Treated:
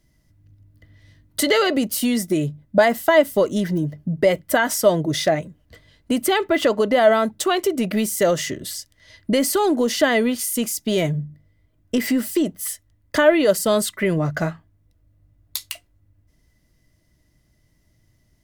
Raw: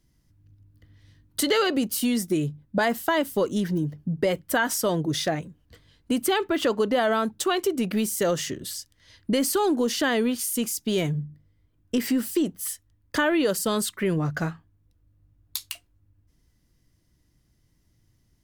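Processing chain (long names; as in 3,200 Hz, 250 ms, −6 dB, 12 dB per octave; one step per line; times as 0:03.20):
hollow resonant body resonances 620/2,000 Hz, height 11 dB, ringing for 45 ms
level +3.5 dB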